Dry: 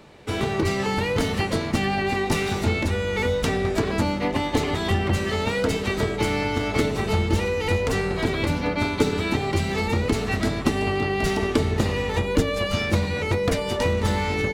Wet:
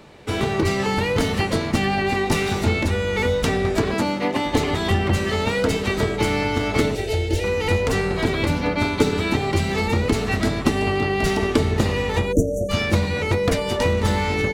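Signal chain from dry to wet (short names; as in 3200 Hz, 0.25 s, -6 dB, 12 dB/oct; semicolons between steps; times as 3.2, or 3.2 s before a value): 3.94–4.46 HPF 170 Hz 12 dB/oct; 6.95–7.44 fixed phaser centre 460 Hz, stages 4; 12.32–12.7 spectral delete 750–5700 Hz; gain +2.5 dB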